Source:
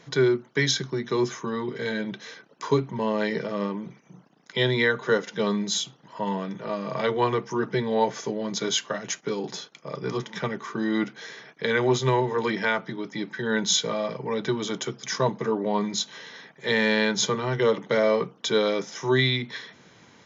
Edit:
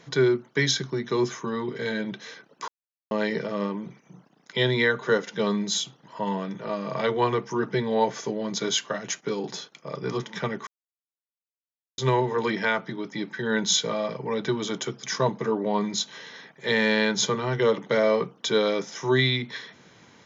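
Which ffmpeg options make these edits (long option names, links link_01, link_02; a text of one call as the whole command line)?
ffmpeg -i in.wav -filter_complex "[0:a]asplit=5[link_01][link_02][link_03][link_04][link_05];[link_01]atrim=end=2.68,asetpts=PTS-STARTPTS,afade=type=out:start_time=2.676:duration=0.004:curve=hsin[link_06];[link_02]atrim=start=2.68:end=3.11,asetpts=PTS-STARTPTS,volume=0[link_07];[link_03]atrim=start=3.11:end=10.67,asetpts=PTS-STARTPTS,afade=type=in:duration=0.004:curve=hsin,afade=type=out:start_time=7.556:duration=0.004:curve=hsin[link_08];[link_04]atrim=start=10.67:end=11.98,asetpts=PTS-STARTPTS,volume=0[link_09];[link_05]atrim=start=11.98,asetpts=PTS-STARTPTS,afade=type=in:duration=0.004:curve=hsin[link_10];[link_06][link_07][link_08][link_09][link_10]concat=n=5:v=0:a=1" out.wav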